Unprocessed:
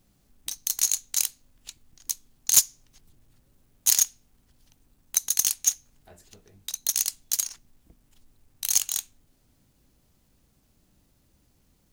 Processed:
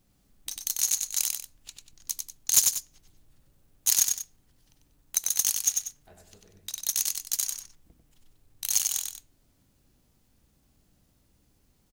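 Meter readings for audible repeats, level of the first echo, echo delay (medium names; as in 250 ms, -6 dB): 2, -4.0 dB, 95 ms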